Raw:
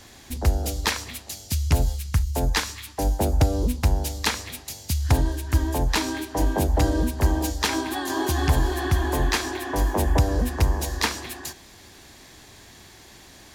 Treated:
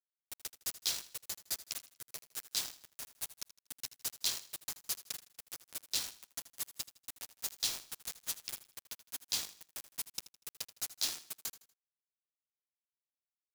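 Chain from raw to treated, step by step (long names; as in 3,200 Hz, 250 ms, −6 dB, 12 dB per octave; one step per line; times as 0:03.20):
0:01.85–0:04.03: lower of the sound and its delayed copy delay 8 ms
inverse Chebyshev high-pass filter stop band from 600 Hz, stop band 80 dB
bit reduction 5 bits
repeating echo 80 ms, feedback 36%, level −16 dB
level −5.5 dB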